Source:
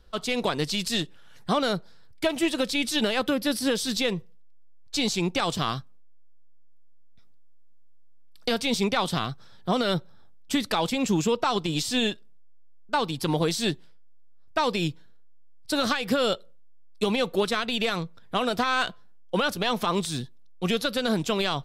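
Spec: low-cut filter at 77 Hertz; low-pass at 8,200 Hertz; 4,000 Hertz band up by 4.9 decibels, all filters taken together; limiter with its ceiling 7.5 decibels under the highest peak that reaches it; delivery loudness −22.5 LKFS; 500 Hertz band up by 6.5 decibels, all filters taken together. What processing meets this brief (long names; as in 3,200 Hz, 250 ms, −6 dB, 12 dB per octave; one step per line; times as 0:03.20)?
high-pass filter 77 Hz
low-pass filter 8,200 Hz
parametric band 500 Hz +7.5 dB
parametric band 4,000 Hz +6 dB
level +3 dB
brickwall limiter −11.5 dBFS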